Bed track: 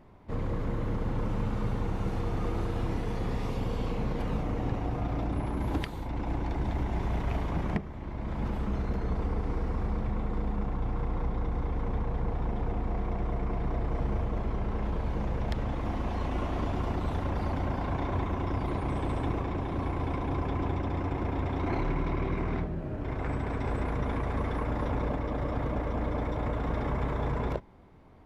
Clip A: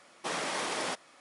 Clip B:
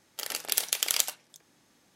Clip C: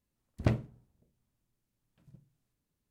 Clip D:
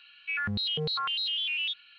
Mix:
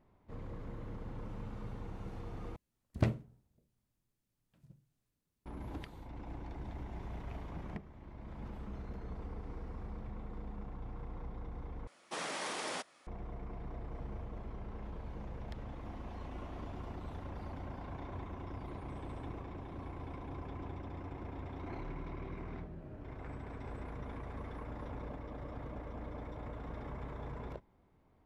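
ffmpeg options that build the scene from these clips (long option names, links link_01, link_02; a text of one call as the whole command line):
ffmpeg -i bed.wav -i cue0.wav -i cue1.wav -i cue2.wav -filter_complex "[0:a]volume=-13.5dB[link_01];[1:a]acontrast=27[link_02];[link_01]asplit=3[link_03][link_04][link_05];[link_03]atrim=end=2.564[link_06];[3:a]atrim=end=2.9,asetpts=PTS-STARTPTS,volume=-2.5dB[link_07];[link_04]atrim=start=5.456:end=11.874[link_08];[link_02]atrim=end=1.2,asetpts=PTS-STARTPTS,volume=-11dB[link_09];[link_05]atrim=start=13.066[link_10];[link_06][link_07]acrossfade=duration=0.004:curve1=hsin:curve2=hsin[link_11];[link_11][link_08]acrossfade=duration=0.004:curve1=hsin:curve2=hsin[link_12];[link_12][link_09]acrossfade=duration=0.004:curve1=hsin:curve2=hsin[link_13];[link_13][link_10]acrossfade=duration=0.004:curve1=hsin:curve2=hsin" out.wav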